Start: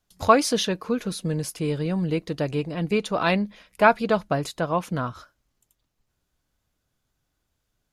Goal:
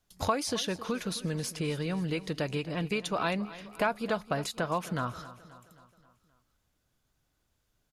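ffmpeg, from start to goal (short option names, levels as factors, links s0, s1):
-filter_complex "[0:a]acrossover=split=1000|7700[s0][s1][s2];[s0]acompressor=threshold=0.0282:ratio=4[s3];[s1]acompressor=threshold=0.0224:ratio=4[s4];[s2]acompressor=threshold=0.00708:ratio=4[s5];[s3][s4][s5]amix=inputs=3:normalize=0,aecho=1:1:265|530|795|1060|1325:0.15|0.0793|0.042|0.0223|0.0118"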